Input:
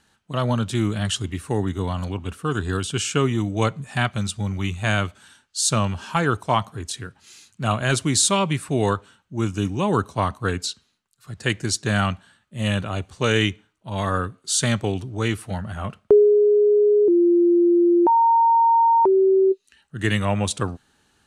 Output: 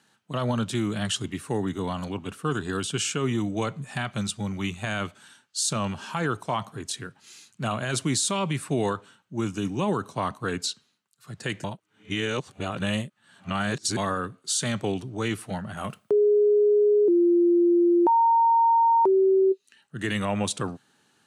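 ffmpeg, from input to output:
ffmpeg -i in.wav -filter_complex "[0:a]asettb=1/sr,asplit=3[link_01][link_02][link_03];[link_01]atrim=end=15.774[link_04];[link_02]atrim=start=15.77:end=19.42,asetpts=PTS-STARTPTS,afade=type=in:duration=0.004:curve=qsin,afade=type=out:start_time=3.646:duration=0.004:curve=qsin,aemphasis=mode=production:type=50fm[link_05];[link_03]atrim=start=19.416[link_06];[link_04][link_05]acrossfade=duration=0.004:curve1=hsin:curve2=qsin[link_07];[link_07][link_06]acrossfade=duration=0.004:curve1=qsin:curve2=hsin,asplit=3[link_08][link_09][link_10];[link_08]atrim=end=11.642[link_11];[link_09]atrim=start=11.638:end=13.972,asetpts=PTS-STARTPTS,areverse[link_12];[link_10]atrim=start=13.968[link_13];[link_11][link_12]acrossfade=duration=0.004:curve1=hsin:curve2=hsin[link_14];[link_14][link_13]acrossfade=duration=0.004:curve1=hsin:curve2=hsin,alimiter=limit=-14.5dB:level=0:latency=1:release=39,highpass=frequency=120:width=0.5412,highpass=frequency=120:width=1.3066,volume=-1.5dB" out.wav

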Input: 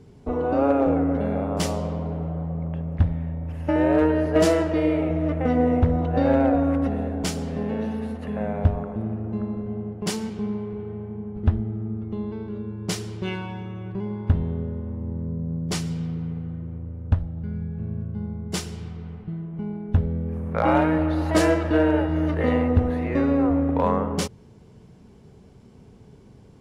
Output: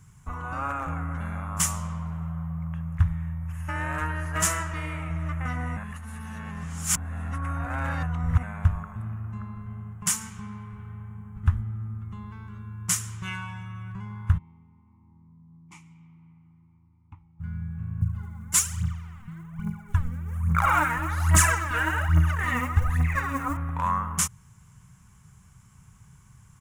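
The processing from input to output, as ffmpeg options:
ffmpeg -i in.wav -filter_complex "[0:a]asplit=3[link_01][link_02][link_03];[link_01]afade=type=out:start_time=14.37:duration=0.02[link_04];[link_02]asplit=3[link_05][link_06][link_07];[link_05]bandpass=frequency=300:width_type=q:width=8,volume=0dB[link_08];[link_06]bandpass=frequency=870:width_type=q:width=8,volume=-6dB[link_09];[link_07]bandpass=frequency=2240:width_type=q:width=8,volume=-9dB[link_10];[link_08][link_09][link_10]amix=inputs=3:normalize=0,afade=type=in:start_time=14.37:duration=0.02,afade=type=out:start_time=17.39:duration=0.02[link_11];[link_03]afade=type=in:start_time=17.39:duration=0.02[link_12];[link_04][link_11][link_12]amix=inputs=3:normalize=0,asettb=1/sr,asplit=3[link_13][link_14][link_15];[link_13]atrim=end=18.014[link_16];[link_14]atrim=start=18.01:end=23.57,asetpts=PTS-STARTPTS,afade=type=in:duration=0.004:curve=qsin,afade=type=out:start_time=5.556:duration=0.004:curve=qsin,aphaser=in_gain=1:out_gain=1:delay=4.4:decay=0.76:speed=1.2:type=triangular[link_17];[link_15]atrim=start=23.566[link_18];[link_16][link_17]acrossfade=duration=0.004:curve1=hsin:curve2=qsin[link_19];[link_19][link_18]acrossfade=duration=0.004:curve1=qsin:curve2=hsin,asplit=3[link_20][link_21][link_22];[link_20]atrim=end=5.772[link_23];[link_21]atrim=start=5.768:end=8.432,asetpts=PTS-STARTPTS,areverse[link_24];[link_22]atrim=start=8.428[link_25];[link_23][link_24]acrossfade=duration=0.004:curve1=hsin:curve2=hsin[link_26];[link_26][link_25]acrossfade=duration=0.004:curve1=hsin:curve2=hsin,firequalizer=gain_entry='entry(150,0);entry(240,-17);entry(450,-25);entry(1100,6);entry(4400,-6);entry(6700,13)':delay=0.05:min_phase=1,volume=-1.5dB" out.wav

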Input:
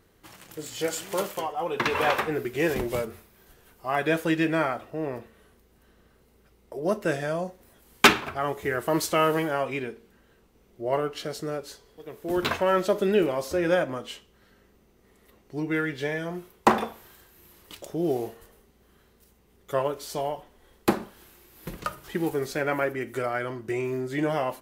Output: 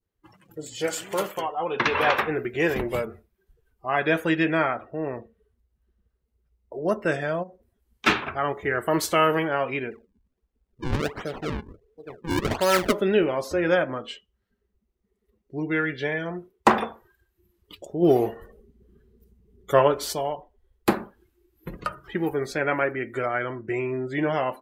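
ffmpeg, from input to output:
ffmpeg -i in.wav -filter_complex "[0:a]asplit=3[link_01][link_02][link_03];[link_01]afade=type=out:start_time=7.42:duration=0.02[link_04];[link_02]acompressor=threshold=-39dB:ratio=10:attack=3.2:release=140:knee=1:detection=peak,afade=type=in:start_time=7.42:duration=0.02,afade=type=out:start_time=8.06:duration=0.02[link_05];[link_03]afade=type=in:start_time=8.06:duration=0.02[link_06];[link_04][link_05][link_06]amix=inputs=3:normalize=0,asplit=3[link_07][link_08][link_09];[link_07]afade=type=out:start_time=9.9:duration=0.02[link_10];[link_08]acrusher=samples=39:mix=1:aa=0.000001:lfo=1:lforange=62.4:lforate=1.4,afade=type=in:start_time=9.9:duration=0.02,afade=type=out:start_time=12.91:duration=0.02[link_11];[link_09]afade=type=in:start_time=12.91:duration=0.02[link_12];[link_10][link_11][link_12]amix=inputs=3:normalize=0,asplit=3[link_13][link_14][link_15];[link_13]afade=type=out:start_time=18.01:duration=0.02[link_16];[link_14]acontrast=79,afade=type=in:start_time=18.01:duration=0.02,afade=type=out:start_time=20.12:duration=0.02[link_17];[link_15]afade=type=in:start_time=20.12:duration=0.02[link_18];[link_16][link_17][link_18]amix=inputs=3:normalize=0,adynamicequalizer=threshold=0.0141:dfrequency=1800:dqfactor=0.78:tfrequency=1800:tqfactor=0.78:attack=5:release=100:ratio=0.375:range=1.5:mode=boostabove:tftype=bell,afftdn=noise_reduction=25:noise_floor=-45,volume=1dB" out.wav

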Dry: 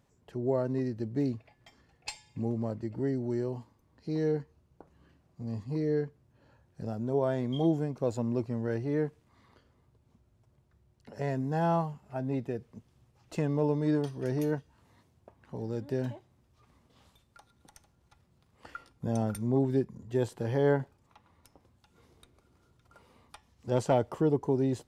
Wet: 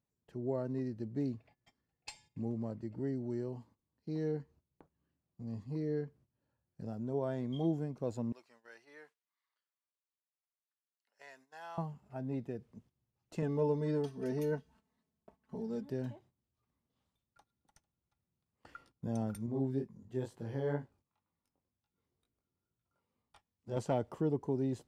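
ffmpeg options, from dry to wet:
ffmpeg -i in.wav -filter_complex "[0:a]asettb=1/sr,asplit=3[link_01][link_02][link_03];[link_01]atrim=end=8.324[link_04];[link_02]atrim=start=8.32:end=11.78,asetpts=PTS-STARTPTS,afade=type=in:duration=0.004:curve=qsin,afade=type=out:start_time=3.456:duration=0.004:curve=qsin,highpass=1400[link_05];[link_03]atrim=start=11.776[link_06];[link_04][link_05]acrossfade=duration=0.004:curve1=hsin:curve2=qsin[link_07];[link_07][link_06]acrossfade=duration=0.004:curve1=qsin:curve2=hsin,asettb=1/sr,asplit=3[link_08][link_09][link_10];[link_08]atrim=end=13.424[link_11];[link_09]atrim=start=13.42:end=15.9,asetpts=PTS-STARTPTS,afade=type=in:duration=0.004:curve=qsin,afade=type=out:start_time=2.476:duration=0.004:curve=qsin,aecho=1:1:4.6:0.95,atrim=end_sample=109368[link_12];[link_10]atrim=start=15.896[link_13];[link_11][link_12]acrossfade=duration=0.004:curve1=hsin:curve2=qsin[link_14];[link_14][link_13]acrossfade=duration=0.004:curve1=qsin:curve2=hsin,asettb=1/sr,asplit=3[link_15][link_16][link_17];[link_15]atrim=end=19.464[link_18];[link_16]atrim=start=19.46:end=23.77,asetpts=PTS-STARTPTS,afade=type=in:duration=0.004:curve=qsin,afade=type=out:start_time=4.306:duration=0.004:curve=qsin,flanger=delay=18:depth=5.1:speed=2.1[link_19];[link_17]atrim=start=23.766[link_20];[link_18][link_19]acrossfade=duration=0.004:curve1=hsin:curve2=qsin[link_21];[link_21][link_20]acrossfade=duration=0.004:curve1=qsin:curve2=hsin,agate=range=-14dB:threshold=-55dB:ratio=16:detection=peak,equalizer=frequency=200:width=0.91:gain=4,volume=-8.5dB" out.wav

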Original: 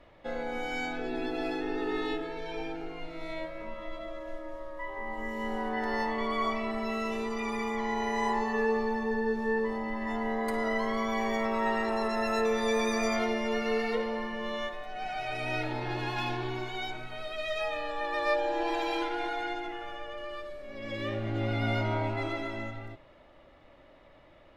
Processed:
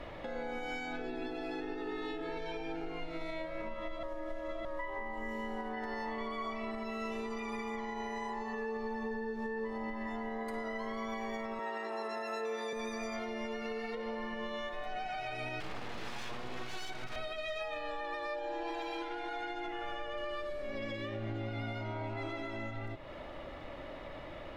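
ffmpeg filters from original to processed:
ffmpeg -i in.wav -filter_complex "[0:a]asettb=1/sr,asplit=3[link_01][link_02][link_03];[link_01]atrim=end=11.594[link_04];[link_02]atrim=start=11.59:end=12.73,asetpts=PTS-STARTPTS,afade=type=in:duration=0.004:curve=qsin,afade=type=out:start_time=1.136:duration=0.004:curve=qsin,highpass=frequency=270:width=0.5412,highpass=frequency=270:width=1.3066[link_05];[link_03]atrim=start=12.726[link_06];[link_04][link_05]acrossfade=duration=0.004:curve1=hsin:curve2=qsin[link_07];[link_07][link_06]acrossfade=duration=0.004:curve1=qsin:curve2=hsin,asettb=1/sr,asplit=3[link_08][link_09][link_10];[link_08]atrim=end=15.604[link_11];[link_09]atrim=start=15.6:end=17.16,asetpts=PTS-STARTPTS,afade=type=in:duration=0.004:curve=qsin,afade=type=out:start_time=1.556:duration=0.004:curve=qsin,aeval=exprs='abs(val(0))':channel_layout=same[link_12];[link_10]atrim=start=17.156[link_13];[link_11][link_12]acrossfade=duration=0.004:curve1=hsin:curve2=qsin[link_14];[link_14][link_13]acrossfade=duration=0.004:curve1=qsin:curve2=hsin,asplit=3[link_15][link_16][link_17];[link_15]atrim=end=4.032[link_18];[link_16]atrim=start=4.028:end=4.652,asetpts=PTS-STARTPTS,areverse[link_19];[link_17]atrim=start=4.648[link_20];[link_18][link_19]acrossfade=duration=0.004:curve1=hsin:curve2=hsin[link_21];[link_21][link_20]acrossfade=duration=0.004:curve1=hsin:curve2=hsin,highshelf=frequency=9300:gain=-4.5,acompressor=threshold=-50dB:ratio=3,alimiter=level_in=17.5dB:limit=-24dB:level=0:latency=1:release=190,volume=-17.5dB,volume=11.5dB" out.wav

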